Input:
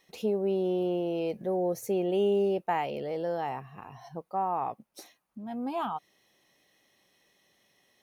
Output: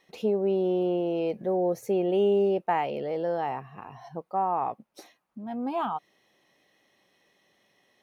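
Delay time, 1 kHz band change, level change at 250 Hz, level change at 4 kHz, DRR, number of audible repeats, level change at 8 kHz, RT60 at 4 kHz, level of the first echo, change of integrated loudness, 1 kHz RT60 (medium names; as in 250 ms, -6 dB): no echo, +3.0 dB, +2.5 dB, 0.0 dB, no reverb, no echo, no reading, no reverb, no echo, +3.0 dB, no reverb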